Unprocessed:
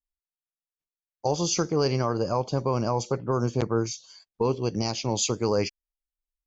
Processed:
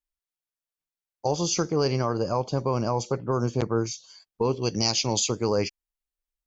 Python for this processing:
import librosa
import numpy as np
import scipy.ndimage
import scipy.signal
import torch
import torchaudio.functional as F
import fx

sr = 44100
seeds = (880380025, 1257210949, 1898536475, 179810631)

y = fx.high_shelf(x, sr, hz=2500.0, db=10.5, at=(4.61, 5.18), fade=0.02)